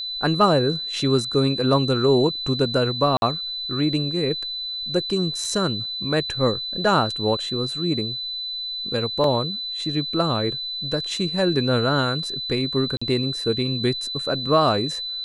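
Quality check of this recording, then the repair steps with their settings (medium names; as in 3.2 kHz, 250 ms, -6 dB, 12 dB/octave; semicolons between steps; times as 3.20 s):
whine 4 kHz -27 dBFS
3.17–3.22 s: dropout 51 ms
5.45 s: dropout 2.1 ms
9.24 s: dropout 2.1 ms
12.97–13.02 s: dropout 45 ms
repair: band-stop 4 kHz, Q 30; interpolate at 3.17 s, 51 ms; interpolate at 5.45 s, 2.1 ms; interpolate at 9.24 s, 2.1 ms; interpolate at 12.97 s, 45 ms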